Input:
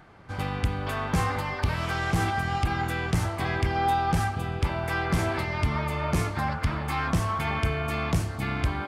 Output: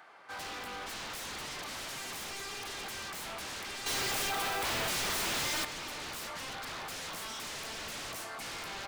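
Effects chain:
high-pass filter 680 Hz 12 dB per octave
in parallel at +2 dB: brickwall limiter −25 dBFS, peak gain reduction 8.5 dB
on the sum: wave folding −30 dBFS
0:03.86–0:05.65: log-companded quantiser 2 bits
level −6.5 dB

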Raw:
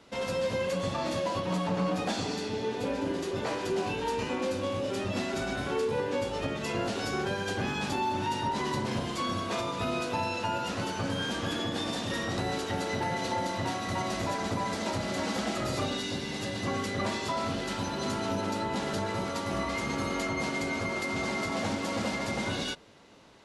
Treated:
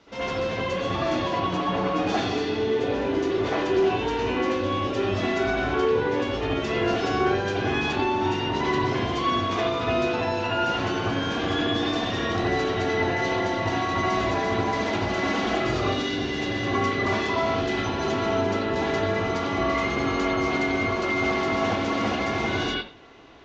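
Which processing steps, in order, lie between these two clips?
Chebyshev low-pass filter 6,400 Hz, order 4
convolution reverb, pre-delay 68 ms, DRR −7.5 dB

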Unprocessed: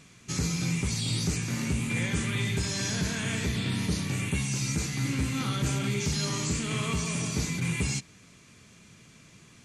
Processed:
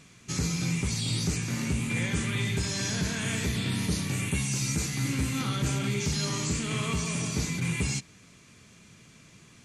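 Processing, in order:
0:03.21–0:05.42: high-shelf EQ 11,000 Hz +9.5 dB

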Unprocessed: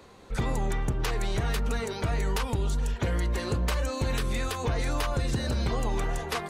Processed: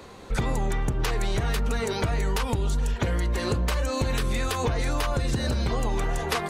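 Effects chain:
downward compressor, threshold −29 dBFS, peak gain reduction 6.5 dB
level +7 dB

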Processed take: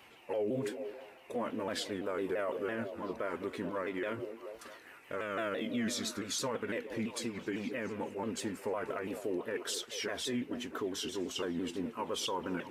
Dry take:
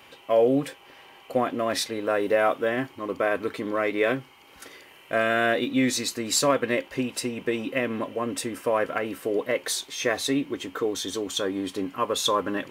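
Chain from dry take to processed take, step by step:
pitch shifter swept by a sawtooth −3.5 semitones, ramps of 168 ms
echo through a band-pass that steps 215 ms, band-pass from 340 Hz, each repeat 0.7 octaves, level −10.5 dB
brickwall limiter −20 dBFS, peak gain reduction 9.5 dB
level −6.5 dB

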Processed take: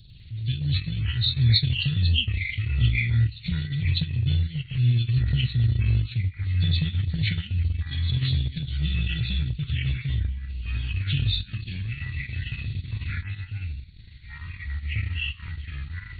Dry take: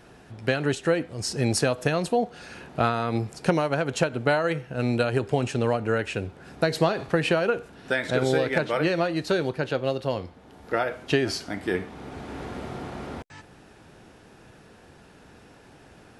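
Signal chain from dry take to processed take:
hearing-aid frequency compression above 3,300 Hz 4 to 1
Chebyshev band-stop filter 120–3,600 Hz, order 3
low shelf with overshoot 410 Hz +7.5 dB, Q 1.5
on a send at −21 dB: convolution reverb RT60 0.60 s, pre-delay 4 ms
on the sum: delay with pitch and tempo change per echo 100 ms, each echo −5 semitones, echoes 2
transient designer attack −4 dB, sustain −8 dB
level +4 dB

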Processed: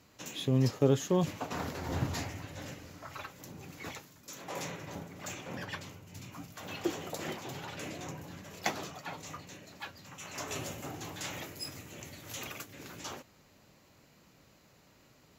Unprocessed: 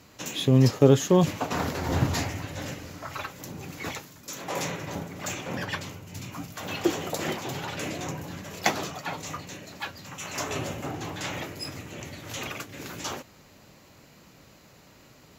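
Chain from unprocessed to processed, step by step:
0:10.47–0:12.72: high-shelf EQ 4,400 Hz → 7,800 Hz +10 dB
level −8.5 dB

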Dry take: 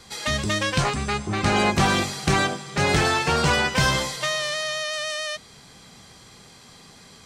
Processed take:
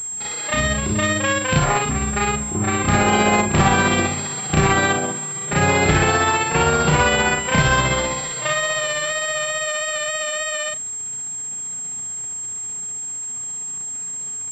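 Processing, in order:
leveller curve on the samples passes 1
time stretch by overlap-add 2×, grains 131 ms
switching amplifier with a slow clock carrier 7,500 Hz
level +2 dB

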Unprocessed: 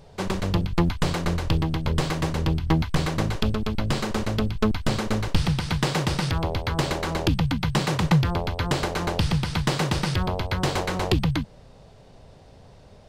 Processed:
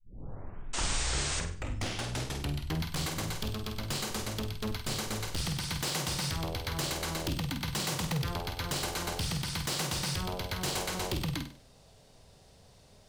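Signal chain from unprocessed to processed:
turntable start at the beginning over 2.78 s
first-order pre-emphasis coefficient 0.8
hard clipping −31 dBFS, distortion −12 dB
sound drawn into the spectrogram noise, 0:00.73–0:01.40, 230–9,100 Hz −38 dBFS
flutter between parallel walls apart 8.4 metres, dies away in 0.42 s
level +3 dB

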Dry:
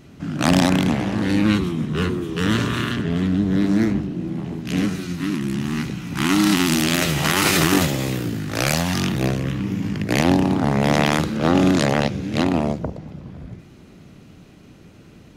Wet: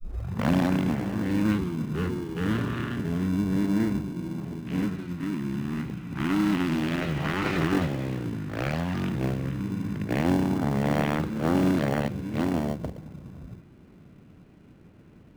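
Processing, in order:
turntable start at the beginning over 0.52 s
low-pass filter 2,200 Hz 12 dB per octave
in parallel at −9 dB: decimation without filtering 35×
on the sum: level −8.5 dB

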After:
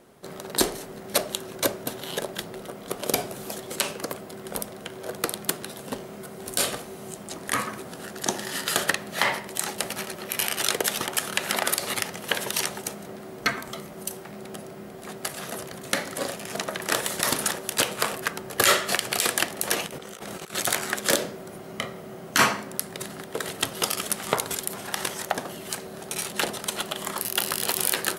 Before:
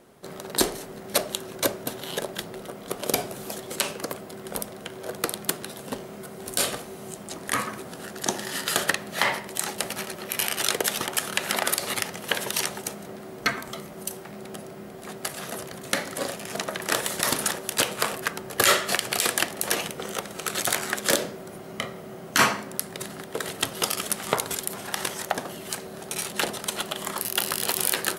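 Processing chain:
0:19.86–0:20.54: compressor whose output falls as the input rises −40 dBFS, ratio −1

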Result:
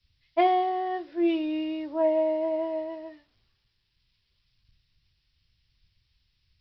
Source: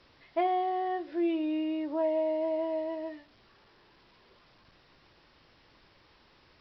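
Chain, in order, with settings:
multiband upward and downward expander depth 100%
level +2 dB

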